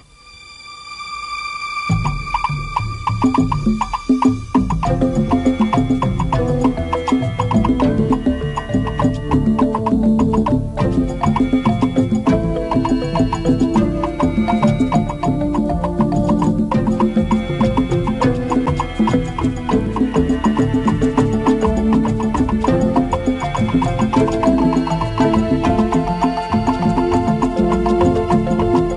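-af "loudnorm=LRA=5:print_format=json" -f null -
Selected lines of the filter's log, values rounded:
"input_i" : "-16.9",
"input_tp" : "-1.5",
"input_lra" : "1.4",
"input_thresh" : "-27.1",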